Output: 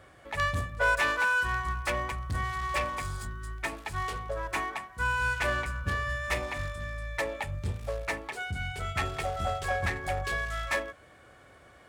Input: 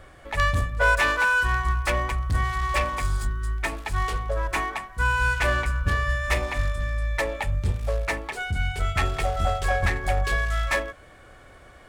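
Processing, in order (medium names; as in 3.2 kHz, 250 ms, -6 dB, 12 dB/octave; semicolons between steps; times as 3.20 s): high-pass 78 Hz 12 dB/octave; trim -5 dB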